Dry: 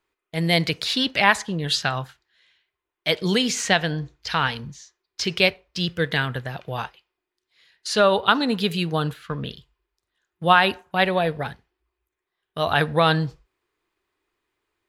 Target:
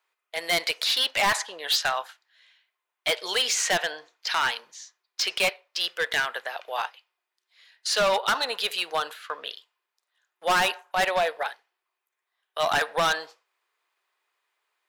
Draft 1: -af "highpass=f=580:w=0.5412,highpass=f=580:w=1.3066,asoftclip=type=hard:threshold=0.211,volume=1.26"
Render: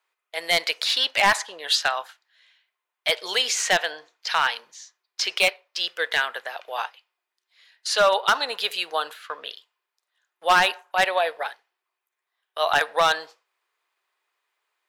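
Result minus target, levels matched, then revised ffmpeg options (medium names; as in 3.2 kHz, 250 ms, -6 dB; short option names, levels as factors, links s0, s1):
hard clipper: distortion -5 dB
-af "highpass=f=580:w=0.5412,highpass=f=580:w=1.3066,asoftclip=type=hard:threshold=0.0944,volume=1.26"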